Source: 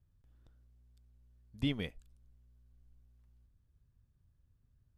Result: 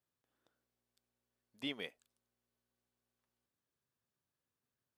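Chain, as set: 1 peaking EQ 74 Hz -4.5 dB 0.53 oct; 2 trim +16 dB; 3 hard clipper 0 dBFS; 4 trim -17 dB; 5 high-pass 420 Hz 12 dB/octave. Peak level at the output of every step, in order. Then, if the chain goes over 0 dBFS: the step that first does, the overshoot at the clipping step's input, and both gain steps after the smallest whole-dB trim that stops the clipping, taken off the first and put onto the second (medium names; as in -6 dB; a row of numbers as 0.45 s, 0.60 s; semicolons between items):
-20.5 dBFS, -4.5 dBFS, -4.5 dBFS, -21.5 dBFS, -27.0 dBFS; nothing clips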